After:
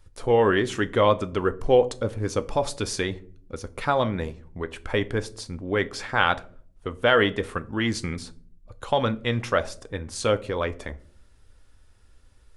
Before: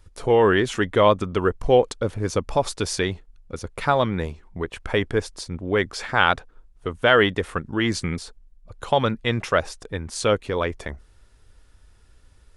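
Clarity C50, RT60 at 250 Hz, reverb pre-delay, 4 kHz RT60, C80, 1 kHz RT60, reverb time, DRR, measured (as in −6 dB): 20.5 dB, 0.80 s, 4 ms, 0.30 s, 24.5 dB, 0.35 s, 0.50 s, 10.5 dB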